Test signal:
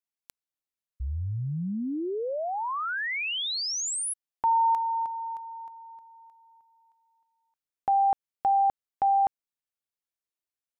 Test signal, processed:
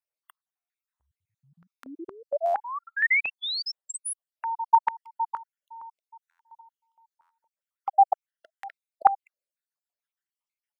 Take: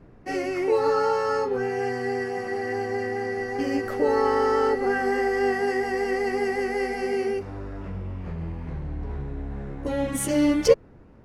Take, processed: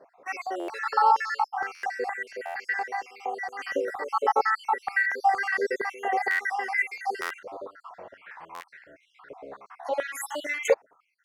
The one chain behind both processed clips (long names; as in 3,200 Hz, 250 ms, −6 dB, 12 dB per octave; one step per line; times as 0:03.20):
time-frequency cells dropped at random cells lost 60%
buffer that repeats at 0:00.59/0:01.74/0:02.45/0:06.30/0:07.21/0:08.54, samples 512, times 7
high-pass on a step sequencer 4.3 Hz 560–1,900 Hz